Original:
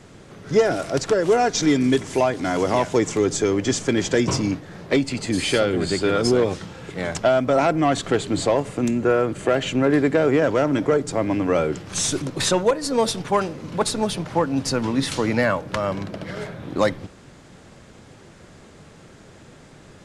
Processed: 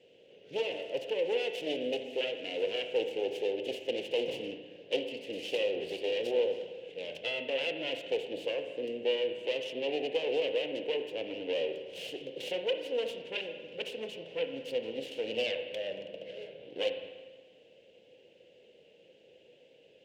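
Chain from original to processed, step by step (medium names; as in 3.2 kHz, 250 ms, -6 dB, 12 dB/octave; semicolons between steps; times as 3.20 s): self-modulated delay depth 0.59 ms; two resonant band-passes 1.2 kHz, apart 2.5 oct; spring tank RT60 1.4 s, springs 36/59 ms, chirp 55 ms, DRR 6.5 dB; trim -2.5 dB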